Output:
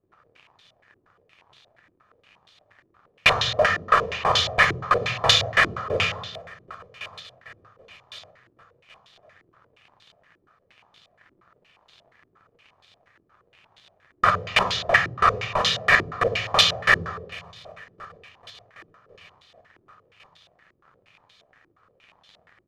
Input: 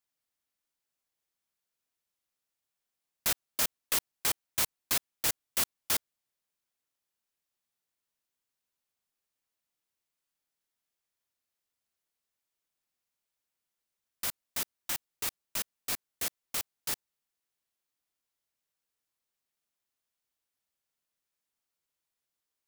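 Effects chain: bass shelf 460 Hz -4.5 dB; comb 1.7 ms, depth 73%; in parallel at +3 dB: compressor with a negative ratio -36 dBFS, ratio -1; on the sum: hard clipper -13 dBFS, distortion -34 dB; flange 1.6 Hz, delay 8.9 ms, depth 9.8 ms, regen -68%; crackle 81 per s -56 dBFS; feedback delay 1109 ms, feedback 46%, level -23.5 dB; on a send at -5.5 dB: reverberation RT60 1.1 s, pre-delay 3 ms; on the sum: loudness maximiser +18 dB; step-sequenced low-pass 8.5 Hz 340–3600 Hz; trim -1 dB

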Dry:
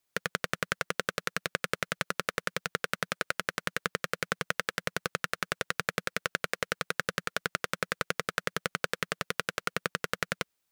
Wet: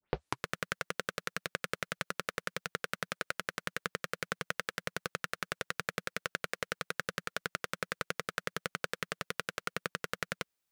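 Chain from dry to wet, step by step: tape start-up on the opening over 0.48 s; trim -5 dB

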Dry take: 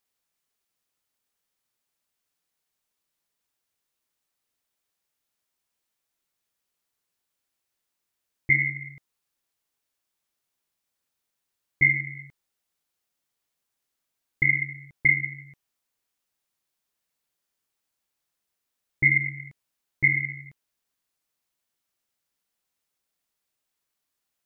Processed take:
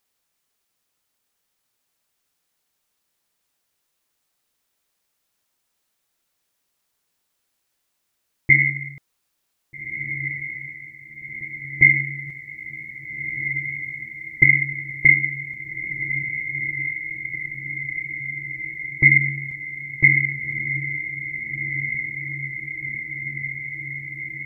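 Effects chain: 12.26–14.44 s: comb 5.8 ms, depth 86%; echo that smears into a reverb 1680 ms, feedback 74%, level -8 dB; trim +6.5 dB

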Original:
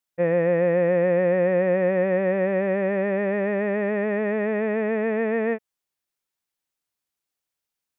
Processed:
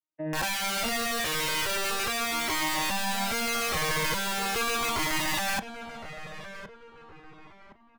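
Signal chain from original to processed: vocoder on a broken chord major triad, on D#3, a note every 413 ms; comb 3.3 ms, depth 43%; peak limiter -23 dBFS, peak gain reduction 10.5 dB; level rider gain up to 12.5 dB; integer overflow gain 20 dB; filtered feedback delay 1065 ms, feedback 41%, low-pass 1.8 kHz, level -10 dB; Shepard-style flanger falling 0.39 Hz

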